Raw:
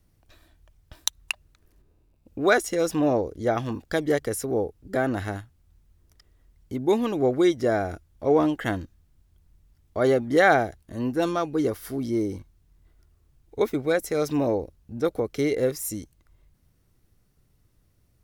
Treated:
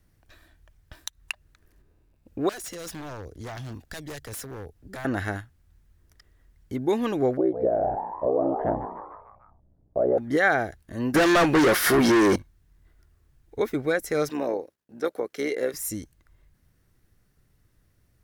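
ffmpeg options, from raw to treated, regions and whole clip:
ffmpeg -i in.wav -filter_complex "[0:a]asettb=1/sr,asplit=3[link_01][link_02][link_03];[link_01]atrim=end=2.494[link_04];[link_02]atrim=start=2.49:end=5.05,asetpts=PTS-STARTPTS,afade=type=in:duration=0.004:curve=qsin,afade=type=out:start_time=2.556:duration=0.004:curve=qsin,equalizer=frequency=690:width=4.1:gain=5,acrossover=split=140|3000[link_05][link_06][link_07];[link_06]acompressor=threshold=-48dB:ratio=2:attack=3.2:release=140:knee=2.83:detection=peak[link_08];[link_05][link_08][link_07]amix=inputs=3:normalize=0,aeval=exprs='0.0266*(abs(mod(val(0)/0.0266+3,4)-2)-1)':channel_layout=same[link_09];[link_03]atrim=start=5.046[link_10];[link_04][link_09]acrossfade=duration=0.004:curve1=hsin:curve2=qsin[link_11];[link_11][link_10]acrossfade=duration=0.004:curve1=qsin:curve2=hsin,asettb=1/sr,asplit=3[link_12][link_13][link_14];[link_12]atrim=end=7.374[link_15];[link_13]atrim=start=7.37:end=10.18,asetpts=PTS-STARTPTS,afade=type=in:duration=0.004:curve=qsin,afade=type=out:start_time=2.806:duration=0.004:curve=qsin,aeval=exprs='val(0)*sin(2*PI*31*n/s)':channel_layout=same,lowpass=frequency=610:width_type=q:width=4.1,asplit=6[link_16][link_17][link_18][link_19][link_20][link_21];[link_17]adelay=149,afreqshift=120,volume=-12.5dB[link_22];[link_18]adelay=298,afreqshift=240,volume=-18dB[link_23];[link_19]adelay=447,afreqshift=360,volume=-23.5dB[link_24];[link_20]adelay=596,afreqshift=480,volume=-29dB[link_25];[link_21]adelay=745,afreqshift=600,volume=-34.6dB[link_26];[link_16][link_22][link_23][link_24][link_25][link_26]amix=inputs=6:normalize=0,atrim=end_sample=123921[link_27];[link_14]atrim=start=10.176[link_28];[link_15][link_27]acrossfade=duration=0.004:curve1=hsin:curve2=qsin[link_29];[link_29][link_28]acrossfade=duration=0.004:curve1=qsin:curve2=hsin,asettb=1/sr,asplit=3[link_30][link_31][link_32];[link_30]atrim=end=11.144[link_33];[link_31]atrim=start=11.14:end=12.36,asetpts=PTS-STARTPTS,afade=type=in:duration=0.004:curve=qsin,afade=type=out:start_time=1.216:duration=0.004:curve=qsin,aecho=1:1:5.5:0.37,atrim=end_sample=53802,asplit=2[link_34][link_35];[link_35]highpass=frequency=720:poles=1,volume=33dB,asoftclip=type=tanh:threshold=-10.5dB[link_36];[link_34][link_36]amix=inputs=2:normalize=0,lowpass=frequency=5100:poles=1,volume=-6dB[link_37];[link_32]atrim=start=12.356[link_38];[link_33][link_37]acrossfade=duration=0.004:curve1=hsin:curve2=qsin[link_39];[link_39][link_38]acrossfade=duration=0.004:curve1=qsin:curve2=hsin,asettb=1/sr,asplit=3[link_40][link_41][link_42];[link_40]atrim=end=14.294[link_43];[link_41]atrim=start=14.29:end=15.74,asetpts=PTS-STARTPTS,afade=type=in:duration=0.004:curve=qsin,afade=type=out:start_time=1.446:duration=0.004:curve=qsin,agate=range=-33dB:threshold=-53dB:ratio=3:release=100:detection=peak,highpass=320,tremolo=f=65:d=0.462[link_44];[link_42]atrim=start=15.736[link_45];[link_43][link_44]acrossfade=duration=0.004:curve1=hsin:curve2=qsin[link_46];[link_46][link_45]acrossfade=duration=0.004:curve1=qsin:curve2=hsin,alimiter=limit=-14.5dB:level=0:latency=1:release=189,equalizer=frequency=1700:width=2.4:gain=6.5" out.wav

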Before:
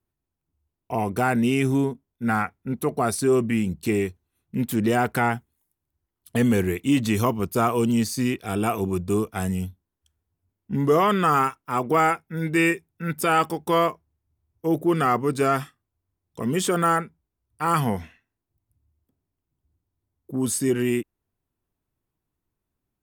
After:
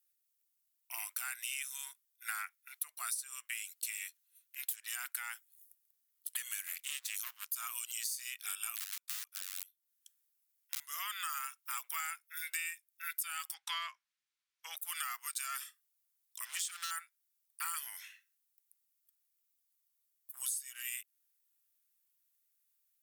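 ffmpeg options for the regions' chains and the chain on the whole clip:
ffmpeg -i in.wav -filter_complex "[0:a]asettb=1/sr,asplit=3[link_01][link_02][link_03];[link_01]atrim=end=6.674[link_04];[link_02]atrim=start=6.67:end=7.5,asetpts=PTS-STARTPTS,afade=type=in:duration=0.004:curve=qsin,afade=type=out:start_time=0.826:duration=0.004:curve=qsin,aeval=exprs='max(val(0),0)':channel_layout=same,acompressor=mode=upward:threshold=-34dB:ratio=2.5:attack=3.2:release=140:knee=2.83:detection=peak[link_05];[link_03]atrim=start=7.496[link_06];[link_04][link_05]acrossfade=duration=0.004:curve1=hsin:curve2=qsin[link_07];[link_07][link_06]acrossfade=duration=0.004:curve1=qsin:curve2=hsin,asettb=1/sr,asplit=3[link_08][link_09][link_10];[link_08]atrim=end=8.754[link_11];[link_09]atrim=start=8.75:end=10.8,asetpts=PTS-STARTPTS,afade=type=in:duration=0.004:curve=qsin,afade=type=out:start_time=2.046:duration=0.004:curve=qsin,acrossover=split=2800[link_12][link_13];[link_13]acompressor=threshold=-49dB:ratio=4:attack=1:release=60[link_14];[link_12][link_14]amix=inputs=2:normalize=0,aeval=exprs='(mod(10.6*val(0)+1,2)-1)/10.6':channel_layout=same[link_15];[link_10]atrim=start=10.796[link_16];[link_11][link_15]acrossfade=duration=0.004:curve1=hsin:curve2=qsin[link_17];[link_17][link_16]acrossfade=duration=0.004:curve1=qsin:curve2=hsin,asettb=1/sr,asplit=3[link_18][link_19][link_20];[link_18]atrim=end=13.544[link_21];[link_19]atrim=start=13.54:end=14.77,asetpts=PTS-STARTPTS,afade=type=in:duration=0.004:curve=qsin,afade=type=out:start_time=1.226:duration=0.004:curve=qsin,highpass=530,lowpass=3700,acontrast=66[link_22];[link_20]atrim=start=14.766[link_23];[link_21][link_22]acrossfade=duration=0.004:curve1=hsin:curve2=qsin[link_24];[link_24][link_23]acrossfade=duration=0.004:curve1=qsin:curve2=hsin,asettb=1/sr,asplit=3[link_25][link_26][link_27];[link_25]atrim=end=16.454[link_28];[link_26]atrim=start=16.45:end=16.91,asetpts=PTS-STARTPTS,afade=type=in:duration=0.004:curve=qsin,afade=type=out:start_time=0.456:duration=0.004:curve=qsin,lowpass=8100,aecho=1:1:6.6:0.44,atrim=end_sample=20286,volume=22.5dB,asoftclip=hard,volume=-22.5dB[link_29];[link_27]atrim=start=16.906[link_30];[link_28][link_29]acrossfade=duration=0.004:curve1=hsin:curve2=qsin[link_31];[link_31][link_30]acrossfade=duration=0.004:curve1=qsin:curve2=hsin,highpass=frequency=1300:width=0.5412,highpass=frequency=1300:width=1.3066,aderivative,acompressor=threshold=-45dB:ratio=10,volume=9dB" out.wav

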